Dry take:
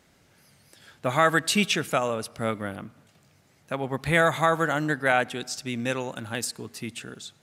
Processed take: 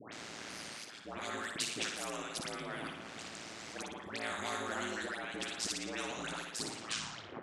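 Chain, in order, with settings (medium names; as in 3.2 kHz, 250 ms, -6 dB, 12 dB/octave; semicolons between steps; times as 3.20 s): tape stop on the ending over 0.93 s; treble shelf 4.8 kHz -9 dB; in parallel at -2 dB: peak limiter -16.5 dBFS, peak gain reduction 9 dB; on the sum: slow attack 645 ms; compression 3:1, threshold -38 dBFS, peak gain reduction 15 dB; phase dispersion highs, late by 126 ms, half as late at 1.3 kHz; ring modulator 56 Hz; cabinet simulation 250–8700 Hz, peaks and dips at 310 Hz +4 dB, 490 Hz -4 dB, 920 Hz -4 dB; flutter echo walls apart 9.9 m, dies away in 0.43 s; spectrum-flattening compressor 2:1; trim +6 dB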